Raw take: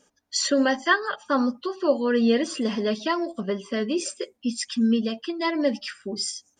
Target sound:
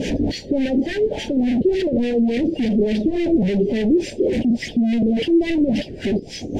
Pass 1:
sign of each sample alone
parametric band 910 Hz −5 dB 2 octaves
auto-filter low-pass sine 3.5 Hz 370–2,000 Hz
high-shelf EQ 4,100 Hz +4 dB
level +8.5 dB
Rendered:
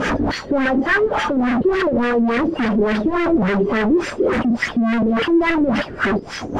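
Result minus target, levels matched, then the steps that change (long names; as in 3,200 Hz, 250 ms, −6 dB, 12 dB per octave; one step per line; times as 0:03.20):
1,000 Hz band +14.0 dB
add after sign of each sample alone: Butterworth band-reject 1,200 Hz, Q 0.55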